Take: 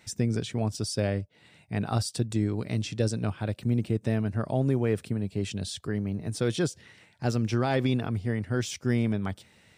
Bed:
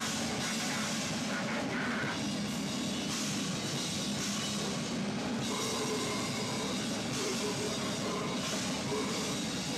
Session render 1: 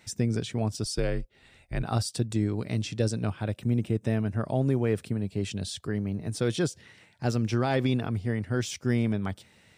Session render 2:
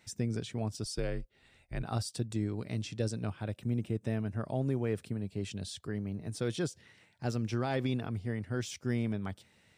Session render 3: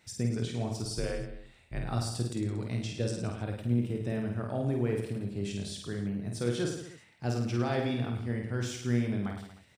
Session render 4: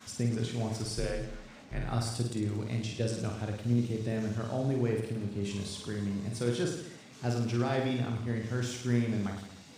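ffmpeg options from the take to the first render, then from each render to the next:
-filter_complex "[0:a]asplit=3[s0][s1][s2];[s0]afade=t=out:st=0.84:d=0.02[s3];[s1]afreqshift=-70,afade=t=in:st=0.84:d=0.02,afade=t=out:st=1.82:d=0.02[s4];[s2]afade=t=in:st=1.82:d=0.02[s5];[s3][s4][s5]amix=inputs=3:normalize=0,asettb=1/sr,asplit=3[s6][s7][s8];[s6]atrim=end=3.444[s9];[s7]atrim=start=3.44:end=4.46,asetpts=PTS-STARTPTS,afade=t=in:d=0.004:c=qsin,afade=t=out:st=1.016:d=0.004:c=qsin,bandreject=f=4400:w=6.2[s10];[s8]atrim=start=4.456[s11];[s9][s10]acrossfade=d=0.004:c1=hsin:c2=qsin[s12];[s12][s11]acrossfade=d=0.004:c1=qsin:c2=hsin"
-af "volume=0.473"
-filter_complex "[0:a]asplit=2[s0][s1];[s1]adelay=25,volume=0.211[s2];[s0][s2]amix=inputs=2:normalize=0,aecho=1:1:50|105|165.5|232|305.3:0.631|0.398|0.251|0.158|0.1"
-filter_complex "[1:a]volume=0.126[s0];[0:a][s0]amix=inputs=2:normalize=0"

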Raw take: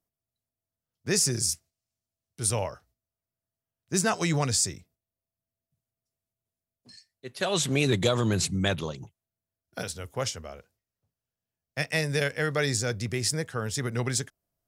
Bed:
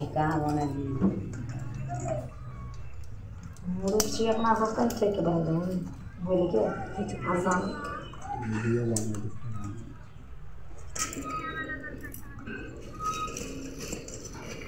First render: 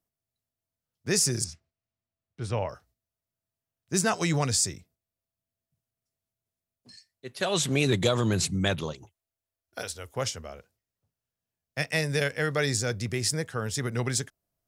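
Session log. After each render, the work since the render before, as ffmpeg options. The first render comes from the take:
-filter_complex "[0:a]asettb=1/sr,asplit=3[s0][s1][s2];[s0]atrim=end=1.444[s3];[s1]atrim=start=1.44:end=2.69,asetpts=PTS-STARTPTS,afade=t=in:d=0.004:c=qsin,afade=t=out:st=1.246:d=0.004:c=qsin,lowpass=2700[s4];[s2]atrim=start=2.686[s5];[s3][s4]acrossfade=d=0.004:c1=hsin:c2=qsin[s6];[s6][s5]acrossfade=d=0.004:c1=qsin:c2=hsin,asettb=1/sr,asplit=3[s7][s8][s9];[s7]atrim=end=8.934[s10];[s8]atrim=start=8.93:end=10.16,asetpts=PTS-STARTPTS,afade=t=in:d=0.004:c=qsin,afade=t=out:st=1.226:d=0.004:c=qsin,equalizer=f=160:w=1.4:g=-14.5[s11];[s9]atrim=start=10.156[s12];[s10][s11]acrossfade=d=0.004:c1=hsin:c2=qsin[s13];[s13][s12]acrossfade=d=0.004:c1=qsin:c2=hsin"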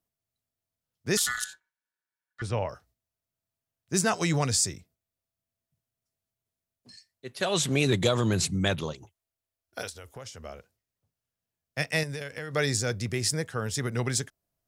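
-filter_complex "[0:a]asettb=1/sr,asplit=3[s0][s1][s2];[s0]atrim=end=1.174[s3];[s1]atrim=start=1.17:end=2.42,asetpts=PTS-STARTPTS,afade=t=in:d=0.004:c=qsin,afade=t=out:st=1.246:d=0.004:c=qsin,aeval=exprs='val(0)*sin(2*PI*1600*n/s)':c=same[s4];[s2]atrim=start=2.416[s5];[s3][s4]acrossfade=d=0.004:c1=hsin:c2=qsin[s6];[s6][s5]acrossfade=d=0.004:c1=qsin:c2=hsin,asettb=1/sr,asplit=3[s7][s8][s9];[s7]atrim=end=9.894[s10];[s8]atrim=start=9.89:end=10.43,asetpts=PTS-STARTPTS,afade=t=in:d=0.004:c=qsin,afade=t=out:st=0.536:d=0.004:c=qsin,acompressor=threshold=0.01:ratio=4:attack=3.2:release=140:knee=1:detection=peak[s11];[s9]atrim=start=10.426[s12];[s10][s11]acrossfade=d=0.004:c1=hsin:c2=qsin[s13];[s13][s12]acrossfade=d=0.004:c1=qsin:c2=hsin,asettb=1/sr,asplit=3[s14][s15][s16];[s14]atrim=end=12.034[s17];[s15]atrim=start=12.03:end=12.54,asetpts=PTS-STARTPTS,afade=t=in:d=0.004:c=qsin,afade=t=out:st=0.506:d=0.004:c=qsin,acompressor=threshold=0.0251:ratio=6:attack=3.2:release=140:knee=1:detection=peak[s18];[s16]atrim=start=12.536[s19];[s17][s18]acrossfade=d=0.004:c1=hsin:c2=qsin[s20];[s20][s19]acrossfade=d=0.004:c1=qsin:c2=hsin"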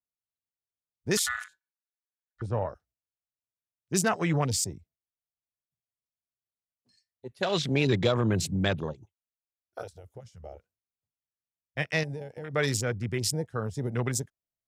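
-af "afwtdn=0.0178,adynamicequalizer=threshold=0.00708:dfrequency=2700:dqfactor=0.7:tfrequency=2700:tqfactor=0.7:attack=5:release=100:ratio=0.375:range=2.5:mode=cutabove:tftype=highshelf"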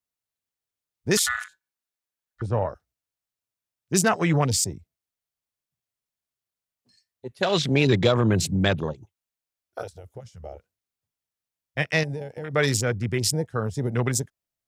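-af "volume=1.78"

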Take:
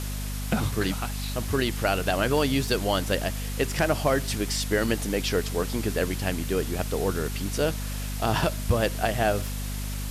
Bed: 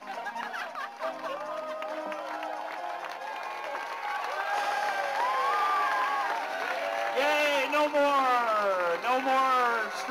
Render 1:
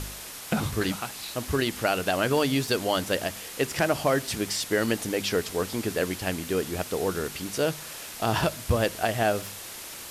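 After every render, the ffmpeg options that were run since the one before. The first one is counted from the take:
-af "bandreject=f=50:t=h:w=4,bandreject=f=100:t=h:w=4,bandreject=f=150:t=h:w=4,bandreject=f=200:t=h:w=4,bandreject=f=250:t=h:w=4"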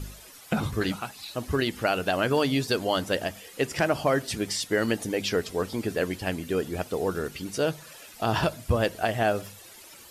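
-af "afftdn=nr=12:nf=-40"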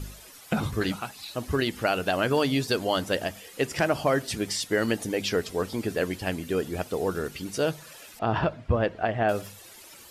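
-filter_complex "[0:a]asettb=1/sr,asplit=3[s0][s1][s2];[s0]atrim=end=8.194[s3];[s1]atrim=start=8.19:end=9.29,asetpts=PTS-STARTPTS,afade=t=in:d=0.004:c=qsin,afade=t=out:st=1.096:d=0.004:c=qsin,lowpass=2200[s4];[s2]atrim=start=9.286[s5];[s3][s4]acrossfade=d=0.004:c1=hsin:c2=qsin[s6];[s6][s5]acrossfade=d=0.004:c1=qsin:c2=hsin"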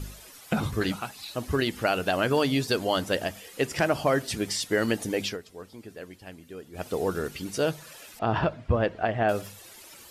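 -filter_complex "[0:a]asplit=3[s0][s1][s2];[s0]atrim=end=5.38,asetpts=PTS-STARTPTS,afade=t=out:st=5.24:d=0.14:silence=0.188365[s3];[s1]atrim=start=5.38:end=6.73,asetpts=PTS-STARTPTS,volume=0.188[s4];[s2]atrim=start=6.73,asetpts=PTS-STARTPTS,afade=t=in:d=0.14:silence=0.188365[s5];[s3][s4][s5]concat=n=3:v=0:a=1"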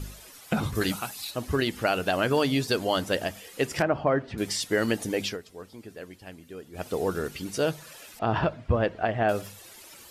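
-filter_complex "[0:a]asettb=1/sr,asplit=3[s0][s1][s2];[s0]atrim=end=0.754[s3];[s1]atrim=start=0.75:end=1.31,asetpts=PTS-STARTPTS,afade=t=in:d=0.004:c=qsin,afade=t=out:st=0.556:d=0.004:c=qsin,highshelf=f=6300:g=11.5[s4];[s2]atrim=start=1.306[s5];[s3][s4]acrossfade=d=0.004:c1=hsin:c2=qsin[s6];[s6][s5]acrossfade=d=0.004:c1=qsin:c2=hsin,asettb=1/sr,asplit=3[s7][s8][s9];[s7]atrim=end=3.824[s10];[s8]atrim=start=3.82:end=4.38,asetpts=PTS-STARTPTS,afade=t=in:d=0.004:c=qsin,afade=t=out:st=0.556:d=0.004:c=qsin,lowpass=1700[s11];[s9]atrim=start=4.376[s12];[s10][s11]acrossfade=d=0.004:c1=hsin:c2=qsin[s13];[s13][s12]acrossfade=d=0.004:c1=qsin:c2=hsin"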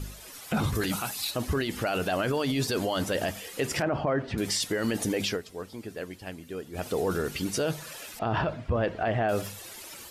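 -af "alimiter=limit=0.0668:level=0:latency=1:release=20,dynaudnorm=f=180:g=3:m=1.68"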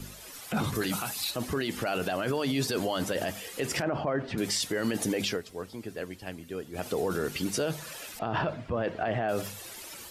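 -filter_complex "[0:a]acrossover=split=110|1700|3400[s0][s1][s2][s3];[s0]acompressor=threshold=0.00355:ratio=6[s4];[s4][s1][s2][s3]amix=inputs=4:normalize=0,alimiter=limit=0.106:level=0:latency=1:release=33"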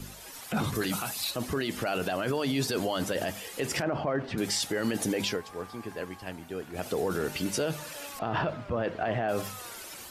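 -filter_complex "[1:a]volume=0.0794[s0];[0:a][s0]amix=inputs=2:normalize=0"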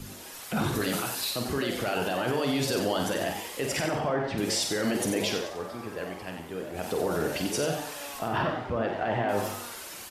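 -filter_complex "[0:a]asplit=2[s0][s1];[s1]adelay=49,volume=0.473[s2];[s0][s2]amix=inputs=2:normalize=0,asplit=5[s3][s4][s5][s6][s7];[s4]adelay=91,afreqshift=140,volume=0.447[s8];[s5]adelay=182,afreqshift=280,volume=0.166[s9];[s6]adelay=273,afreqshift=420,volume=0.061[s10];[s7]adelay=364,afreqshift=560,volume=0.0226[s11];[s3][s8][s9][s10][s11]amix=inputs=5:normalize=0"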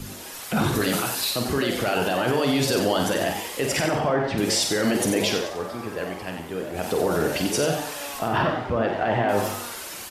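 -af "volume=1.88"

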